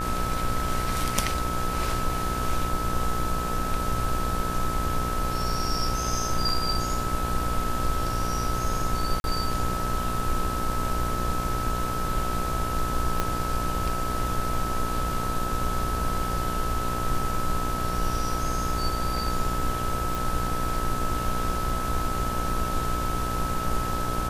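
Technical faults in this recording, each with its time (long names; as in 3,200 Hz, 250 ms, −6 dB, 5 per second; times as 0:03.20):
mains buzz 60 Hz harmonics 29 −32 dBFS
whistle 1,300 Hz −30 dBFS
0:09.20–0:09.24: drop-out 41 ms
0:13.20: click −10 dBFS
0:20.15: click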